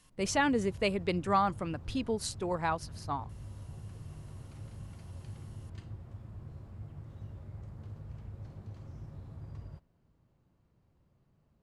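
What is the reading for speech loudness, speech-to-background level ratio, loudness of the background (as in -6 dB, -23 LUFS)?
-32.0 LUFS, 15.0 dB, -47.0 LUFS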